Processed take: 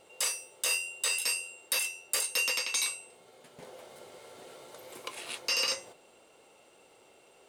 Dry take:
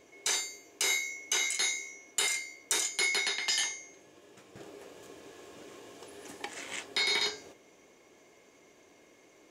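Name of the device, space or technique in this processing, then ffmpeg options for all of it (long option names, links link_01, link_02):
nightcore: -af "asetrate=56007,aresample=44100"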